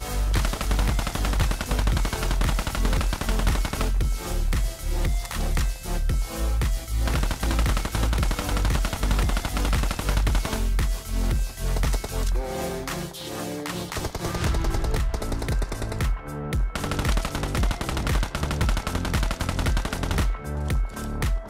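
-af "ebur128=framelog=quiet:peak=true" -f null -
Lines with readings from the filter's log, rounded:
Integrated loudness:
  I:         -27.0 LUFS
  Threshold: -37.0 LUFS
Loudness range:
  LRA:         3.1 LU
  Threshold: -47.0 LUFS
  LRA low:   -28.8 LUFS
  LRA high:  -25.7 LUFS
True peak:
  Peak:      -10.8 dBFS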